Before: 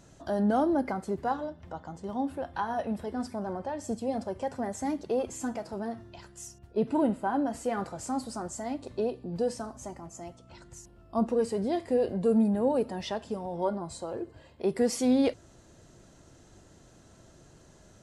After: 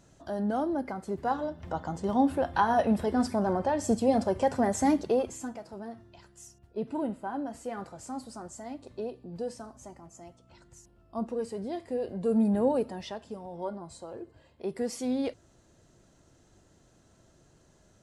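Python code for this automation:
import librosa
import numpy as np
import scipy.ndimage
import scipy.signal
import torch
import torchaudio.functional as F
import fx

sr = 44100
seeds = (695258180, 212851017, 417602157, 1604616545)

y = fx.gain(x, sr, db=fx.line((0.94, -4.0), (1.78, 7.0), (4.96, 7.0), (5.54, -6.0), (12.07, -6.0), (12.58, 2.0), (13.17, -6.0)))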